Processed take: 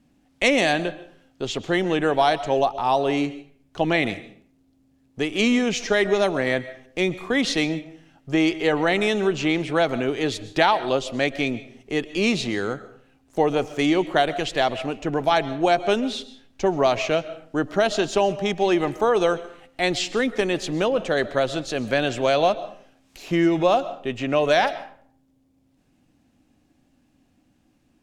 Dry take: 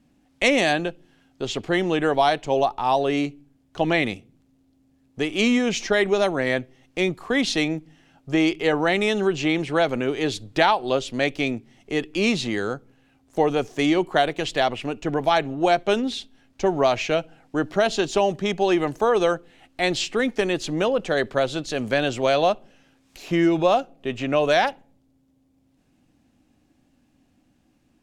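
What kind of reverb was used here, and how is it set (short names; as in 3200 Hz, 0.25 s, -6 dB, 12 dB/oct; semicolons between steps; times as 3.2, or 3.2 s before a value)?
digital reverb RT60 0.54 s, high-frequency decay 0.7×, pre-delay 90 ms, DRR 15 dB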